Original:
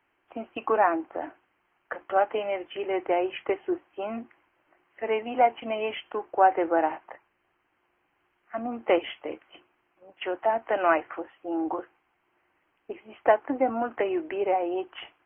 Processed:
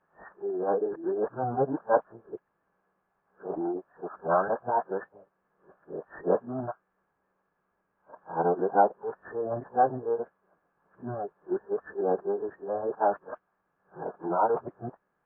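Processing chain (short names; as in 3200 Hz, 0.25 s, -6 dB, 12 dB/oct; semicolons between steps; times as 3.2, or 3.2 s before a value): whole clip reversed; air absorption 390 m; formant-preserving pitch shift -11 st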